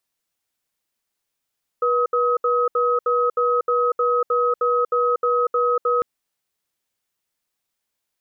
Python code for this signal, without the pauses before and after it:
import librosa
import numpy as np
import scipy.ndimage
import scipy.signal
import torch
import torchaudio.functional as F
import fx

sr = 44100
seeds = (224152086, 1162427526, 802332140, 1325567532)

y = fx.cadence(sr, length_s=4.2, low_hz=485.0, high_hz=1270.0, on_s=0.24, off_s=0.07, level_db=-19.0)